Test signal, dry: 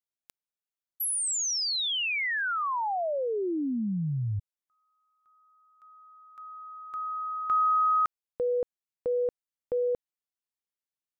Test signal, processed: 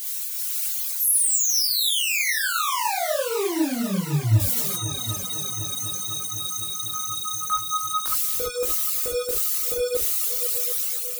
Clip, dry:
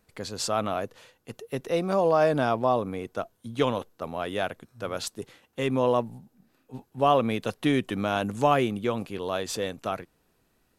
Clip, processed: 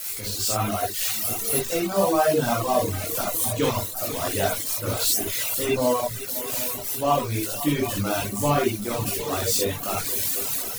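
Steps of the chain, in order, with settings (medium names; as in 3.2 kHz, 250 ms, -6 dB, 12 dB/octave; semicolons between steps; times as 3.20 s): zero-crossing glitches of -18.5 dBFS; bass shelf 140 Hz +8 dB; gated-style reverb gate 90 ms rising, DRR -1 dB; level rider gain up to 6.5 dB; chorus voices 4, 0.79 Hz, delay 19 ms, depth 1.8 ms; multi-head delay 251 ms, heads second and third, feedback 63%, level -13.5 dB; reverb removal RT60 1.2 s; trim -2.5 dB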